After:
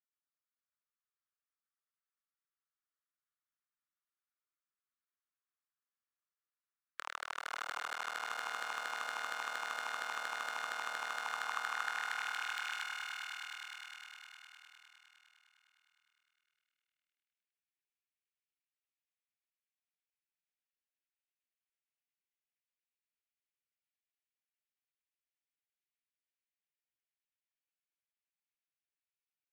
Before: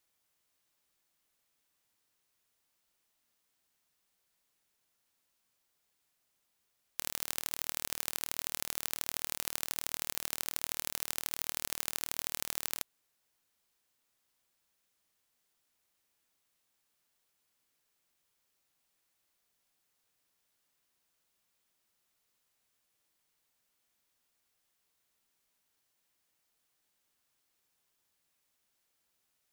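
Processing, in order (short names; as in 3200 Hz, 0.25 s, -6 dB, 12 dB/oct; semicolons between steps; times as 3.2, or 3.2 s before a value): per-bin expansion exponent 1.5; elliptic band-stop 160–1200 Hz; sample leveller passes 2; in parallel at +0.5 dB: limiter -21 dBFS, peak gain reduction 14 dB; on the sum: LFO band-pass saw down 8.6 Hz 800–1800 Hz; one-sided clip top -40.5 dBFS, bottom -31.5 dBFS; high-pass sweep 580 Hz -> 2500 Hz, 11.04–12.36; on a send: swelling echo 0.102 s, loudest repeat 5, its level -7.5 dB; on the sum: gain +5 dB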